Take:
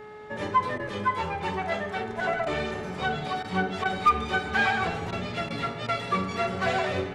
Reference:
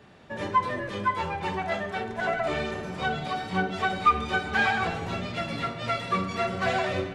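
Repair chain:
clipped peaks rebuilt −12 dBFS
hum removal 424 Hz, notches 5
repair the gap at 0:00.78/0:02.45/0:03.43/0:03.84/0:05.11/0:05.49/0:05.87, 13 ms

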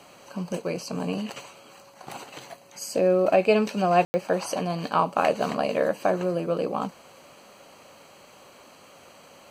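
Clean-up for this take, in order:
ambience match 0:04.05–0:04.14

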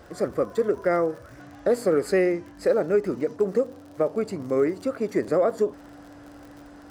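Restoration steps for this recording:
click removal
notch filter 290 Hz, Q 30

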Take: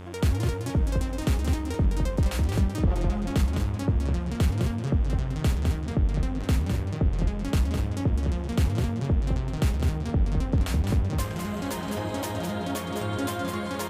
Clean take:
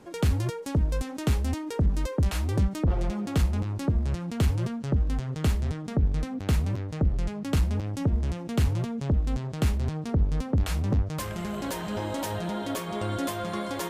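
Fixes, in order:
hum removal 90.5 Hz, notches 40
echo removal 207 ms −5.5 dB

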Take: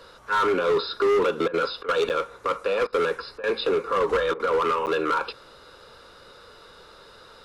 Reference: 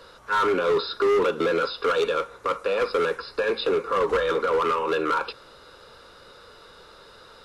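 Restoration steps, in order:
repair the gap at 0:02.09/0:04.86, 9 ms
repair the gap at 0:01.48/0:01.83/0:02.87/0:03.38/0:04.34, 55 ms

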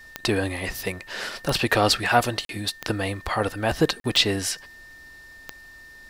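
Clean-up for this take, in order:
click removal
notch filter 1,800 Hz, Q 30
repair the gap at 0:02.45/0:04.00, 42 ms

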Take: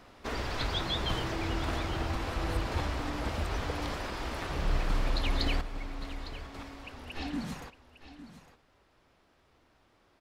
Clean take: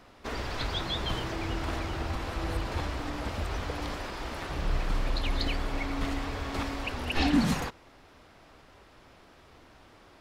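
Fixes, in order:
echo removal 856 ms −14 dB
level correction +11.5 dB, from 0:05.61

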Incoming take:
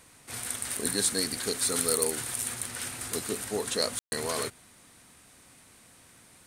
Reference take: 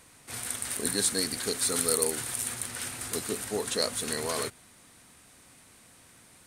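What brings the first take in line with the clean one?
clipped peaks rebuilt −12 dBFS
ambience match 0:03.99–0:04.12

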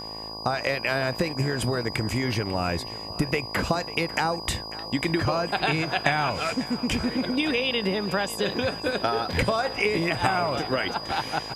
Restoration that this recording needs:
hum removal 54.1 Hz, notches 21
notch filter 4,900 Hz, Q 30
downward expander −28 dBFS, range −21 dB
echo removal 545 ms −17 dB

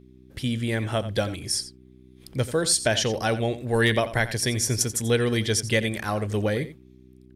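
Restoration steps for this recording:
clipped peaks rebuilt −10 dBFS
hum removal 63.2 Hz, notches 6
echo removal 87 ms −14 dB

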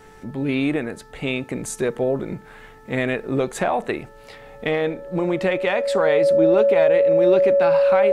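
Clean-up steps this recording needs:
hum removal 437.6 Hz, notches 4
notch filter 560 Hz, Q 30

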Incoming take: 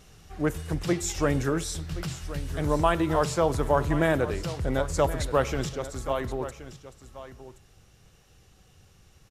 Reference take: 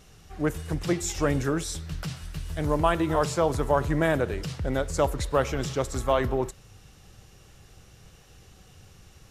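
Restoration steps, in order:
echo removal 1,074 ms −14 dB
level correction +5.5 dB, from 0:05.69

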